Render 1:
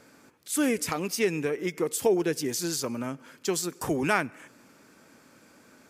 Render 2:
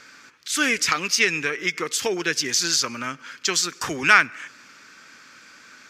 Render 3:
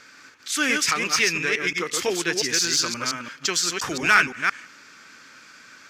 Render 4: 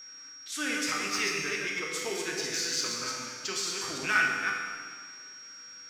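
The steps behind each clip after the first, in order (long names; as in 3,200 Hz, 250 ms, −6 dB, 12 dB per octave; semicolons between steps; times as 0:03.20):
flat-topped bell 2,800 Hz +16 dB 2.9 octaves; level −2.5 dB
delay that plays each chunk backwards 173 ms, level −3.5 dB; in parallel at −3 dB: hard clipping −13 dBFS, distortion −10 dB; on the sum: level −6 dB
dense smooth reverb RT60 2 s, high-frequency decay 0.9×, DRR 1 dB; steady tone 5,600 Hz −32 dBFS; tuned comb filter 99 Hz, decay 1.1 s, harmonics all, mix 80%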